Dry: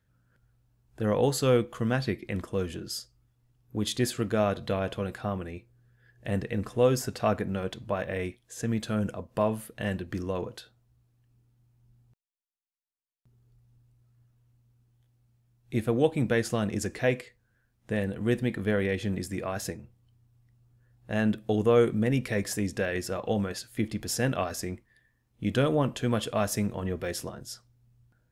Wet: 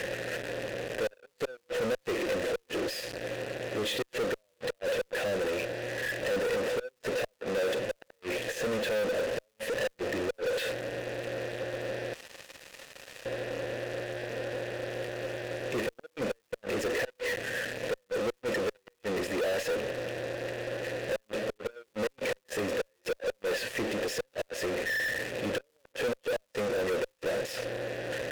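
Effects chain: zero-crossing step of -27 dBFS; dynamic EQ 400 Hz, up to +4 dB, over -36 dBFS, Q 1.9; vowel filter e; flipped gate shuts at -24 dBFS, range -34 dB; in parallel at -8 dB: fuzz box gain 49 dB, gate -55 dBFS; on the sum: crackle 530/s -53 dBFS; gain -8 dB

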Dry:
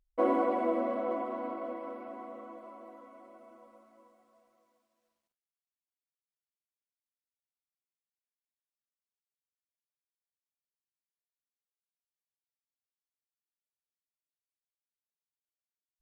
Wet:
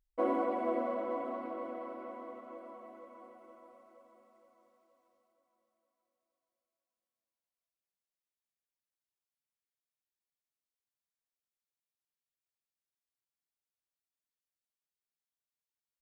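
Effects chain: feedback echo 0.469 s, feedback 56%, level -9.5 dB; gain -4 dB

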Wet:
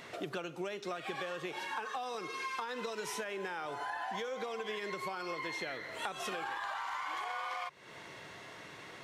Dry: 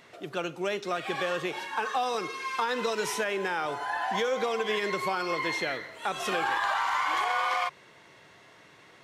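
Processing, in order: compressor 12:1, threshold -41 dBFS, peak gain reduction 17 dB; gain +5 dB

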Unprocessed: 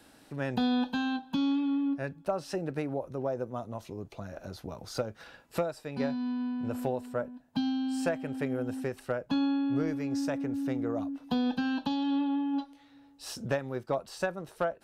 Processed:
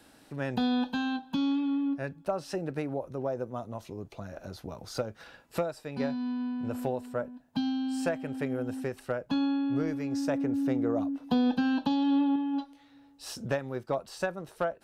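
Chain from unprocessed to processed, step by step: 10.28–12.36 bell 380 Hz +4 dB 2.8 oct

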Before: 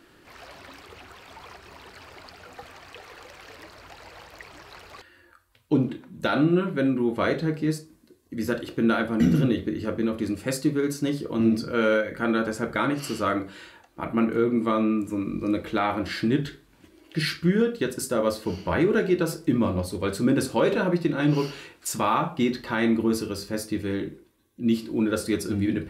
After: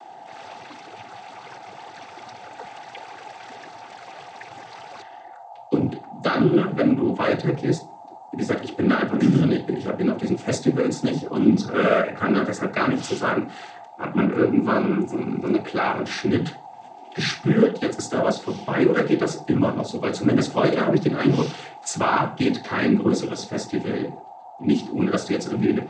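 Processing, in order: whine 760 Hz -43 dBFS; noise vocoder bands 16; gain +3.5 dB

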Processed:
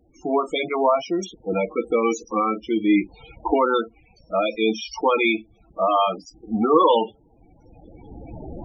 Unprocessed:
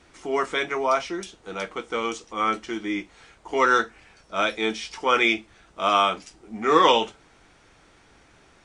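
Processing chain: recorder AGC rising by 14 dB/s; bell 1600 Hz -13.5 dB 0.65 oct; notch 400 Hz, Q 12; sample leveller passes 1; loudest bins only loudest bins 16; gain +1.5 dB

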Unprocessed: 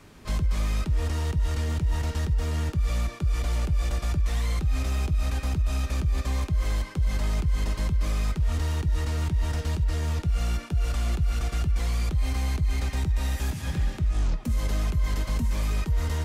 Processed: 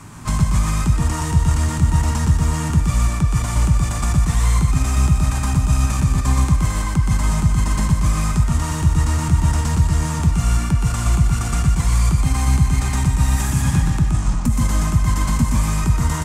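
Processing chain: limiter -22 dBFS, peak gain reduction 4.5 dB; ten-band EQ 125 Hz +11 dB, 250 Hz +4 dB, 500 Hz -8 dB, 1000 Hz +10 dB, 4000 Hz -4 dB, 8000 Hz +12 dB; echo 0.122 s -3.5 dB; gain +6.5 dB

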